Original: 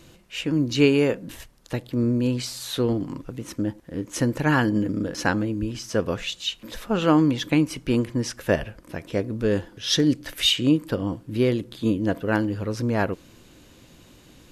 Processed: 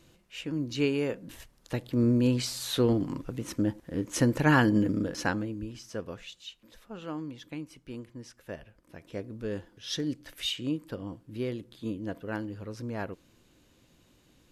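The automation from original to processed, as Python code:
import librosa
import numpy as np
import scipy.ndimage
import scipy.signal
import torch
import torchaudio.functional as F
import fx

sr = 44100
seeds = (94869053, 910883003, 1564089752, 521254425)

y = fx.gain(x, sr, db=fx.line((1.02, -9.5), (2.09, -1.5), (4.87, -1.5), (5.6, -10.0), (6.8, -19.0), (8.64, -19.0), (9.13, -12.0)))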